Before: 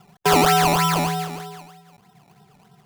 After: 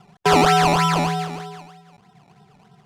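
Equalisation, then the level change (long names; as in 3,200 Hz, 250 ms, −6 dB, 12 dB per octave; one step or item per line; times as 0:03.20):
high-frequency loss of the air 55 metres
+1.5 dB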